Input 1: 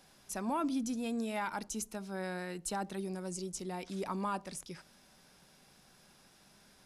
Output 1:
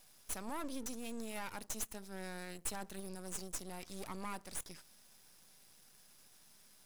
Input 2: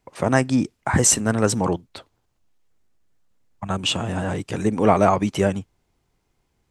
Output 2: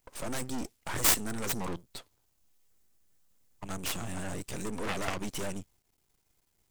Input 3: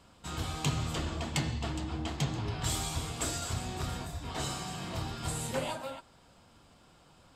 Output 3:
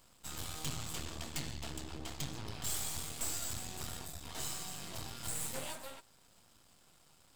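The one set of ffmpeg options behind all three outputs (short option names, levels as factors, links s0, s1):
-af "aemphasis=mode=production:type=75kf,aeval=exprs='max(val(0),0)':c=same,aeval=exprs='2.11*(cos(1*acos(clip(val(0)/2.11,-1,1)))-cos(1*PI/2))+0.668*(cos(4*acos(clip(val(0)/2.11,-1,1)))-cos(4*PI/2))+0.266*(cos(6*acos(clip(val(0)/2.11,-1,1)))-cos(6*PI/2))+0.473*(cos(8*acos(clip(val(0)/2.11,-1,1)))-cos(8*PI/2))':c=same,volume=0.596"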